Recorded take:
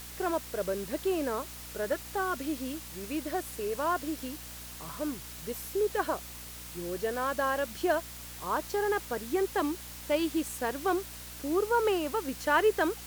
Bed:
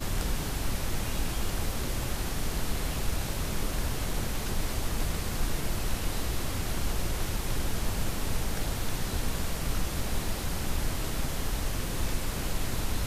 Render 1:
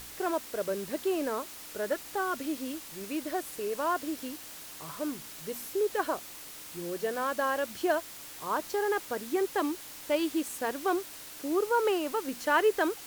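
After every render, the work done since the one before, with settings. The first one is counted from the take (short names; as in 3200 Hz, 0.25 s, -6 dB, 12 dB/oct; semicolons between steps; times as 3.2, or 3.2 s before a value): de-hum 60 Hz, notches 4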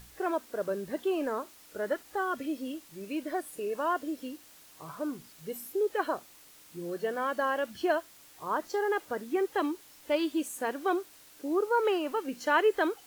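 noise print and reduce 10 dB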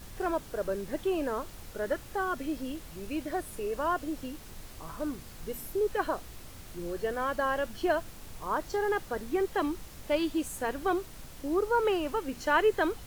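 add bed -16.5 dB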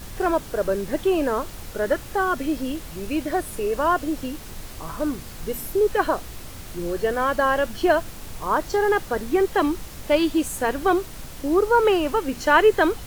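gain +9 dB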